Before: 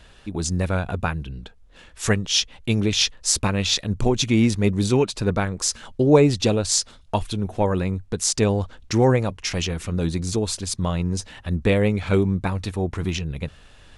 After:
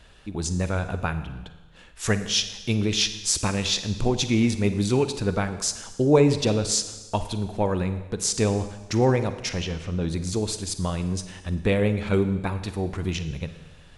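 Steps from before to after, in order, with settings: 9.49–10.08 s: distance through air 120 m; Schroeder reverb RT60 1.2 s, DRR 10 dB; trim -3 dB

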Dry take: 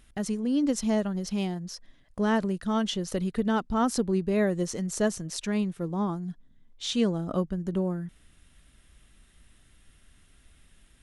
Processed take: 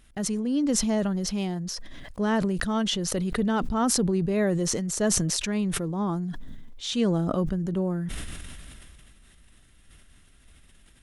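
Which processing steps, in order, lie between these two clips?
decay stretcher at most 21 dB/s

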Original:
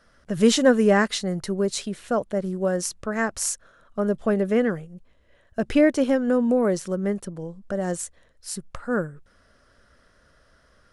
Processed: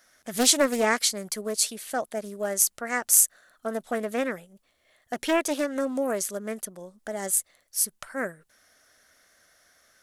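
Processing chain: RIAA curve recording; wide varispeed 1.09×; loudspeaker Doppler distortion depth 0.33 ms; trim -3 dB

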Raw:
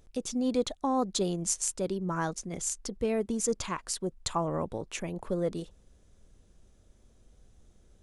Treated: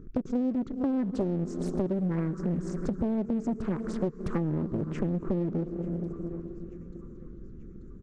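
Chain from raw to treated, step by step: reverberation RT60 4.4 s, pre-delay 98 ms, DRR 14.5 dB; resampled via 16 kHz; FFT filter 100 Hz 0 dB, 150 Hz +9 dB, 390 Hz +7 dB, 710 Hz -28 dB, 1.3 kHz -3 dB, 3.1 kHz -27 dB; thinning echo 887 ms, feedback 61%, high-pass 940 Hz, level -23 dB; in parallel at -5 dB: hard clipper -35 dBFS, distortion -3 dB; on the sum: compression 10:1, threshold -34 dBFS, peak gain reduction 16.5 dB; loudspeaker Doppler distortion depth 0.83 ms; trim +8.5 dB

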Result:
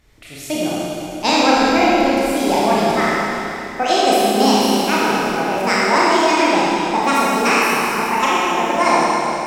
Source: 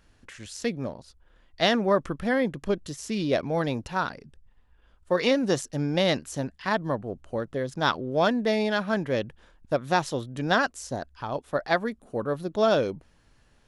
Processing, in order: gliding tape speed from 128% -> 161%; Chebyshev shaper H 4 -38 dB, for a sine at -8 dBFS; Schroeder reverb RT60 3.2 s, combs from 26 ms, DRR -7.5 dB; trim +3 dB

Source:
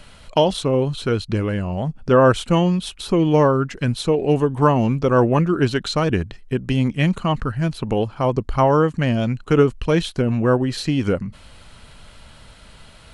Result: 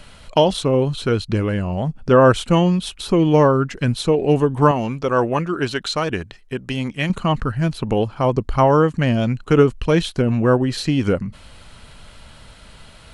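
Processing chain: 4.71–7.10 s: bass shelf 370 Hz -9.5 dB; trim +1.5 dB

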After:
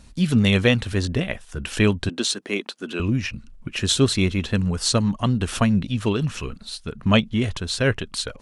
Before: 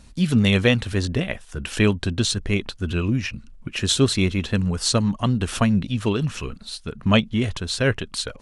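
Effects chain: 2.09–3.00 s: high-pass 240 Hz 24 dB/octave

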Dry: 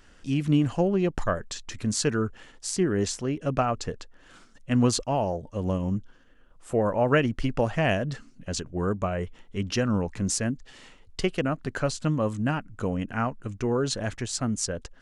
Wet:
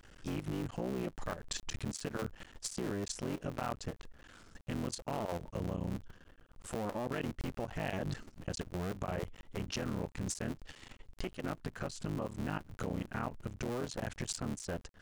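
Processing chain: cycle switcher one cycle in 3, muted; compression 16:1, threshold -32 dBFS, peak gain reduction 16 dB; peak limiter -28 dBFS, peak gain reduction 10.5 dB; level held to a coarse grid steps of 10 dB; trim +3.5 dB

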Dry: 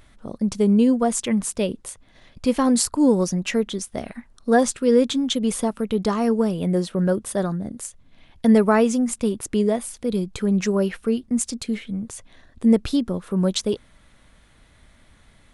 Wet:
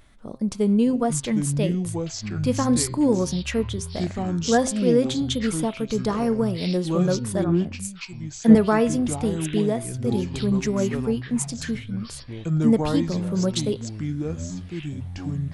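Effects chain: ever faster or slower copies 513 ms, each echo -6 st, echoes 3, each echo -6 dB; de-hum 131.9 Hz, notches 37; 7.44–8.55 s: three bands expanded up and down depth 100%; trim -2.5 dB

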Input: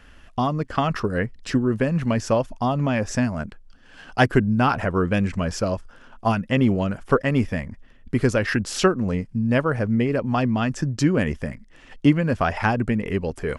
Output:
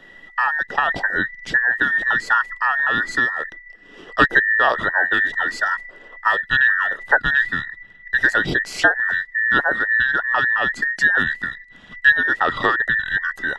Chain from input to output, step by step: every band turned upside down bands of 2 kHz; treble shelf 6.5 kHz -12 dB; trim +3 dB

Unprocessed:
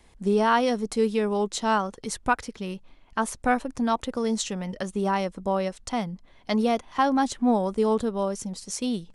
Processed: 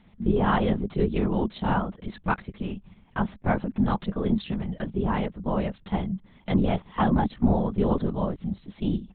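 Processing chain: LPC vocoder at 8 kHz whisper; peaking EQ 200 Hz +14 dB 0.62 oct; trim -3.5 dB

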